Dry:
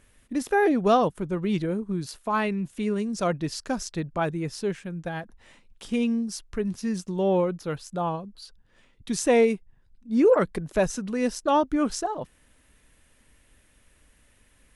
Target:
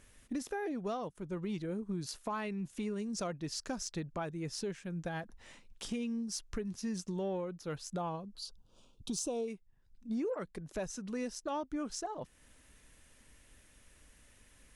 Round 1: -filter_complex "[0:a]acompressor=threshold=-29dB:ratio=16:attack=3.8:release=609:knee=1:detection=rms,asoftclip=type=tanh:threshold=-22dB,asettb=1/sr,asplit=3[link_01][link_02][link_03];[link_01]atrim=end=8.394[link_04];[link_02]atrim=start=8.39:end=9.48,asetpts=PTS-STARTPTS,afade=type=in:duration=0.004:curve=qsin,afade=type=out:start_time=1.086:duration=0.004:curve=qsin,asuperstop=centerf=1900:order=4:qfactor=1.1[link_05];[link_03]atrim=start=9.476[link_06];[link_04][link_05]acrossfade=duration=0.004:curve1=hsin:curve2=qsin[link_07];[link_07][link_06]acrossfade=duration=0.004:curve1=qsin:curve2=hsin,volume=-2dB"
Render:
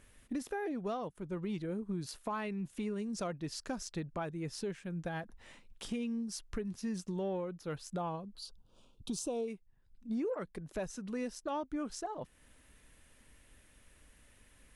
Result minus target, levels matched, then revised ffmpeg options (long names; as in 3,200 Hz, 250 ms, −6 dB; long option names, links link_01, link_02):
8,000 Hz band −3.5 dB
-filter_complex "[0:a]acompressor=threshold=-29dB:ratio=16:attack=3.8:release=609:knee=1:detection=rms,equalizer=frequency=6100:width=1.4:gain=5,asoftclip=type=tanh:threshold=-22dB,asettb=1/sr,asplit=3[link_01][link_02][link_03];[link_01]atrim=end=8.394[link_04];[link_02]atrim=start=8.39:end=9.48,asetpts=PTS-STARTPTS,afade=type=in:duration=0.004:curve=qsin,afade=type=out:start_time=1.086:duration=0.004:curve=qsin,asuperstop=centerf=1900:order=4:qfactor=1.1[link_05];[link_03]atrim=start=9.476[link_06];[link_04][link_05]acrossfade=duration=0.004:curve1=hsin:curve2=qsin[link_07];[link_07][link_06]acrossfade=duration=0.004:curve1=qsin:curve2=hsin,volume=-2dB"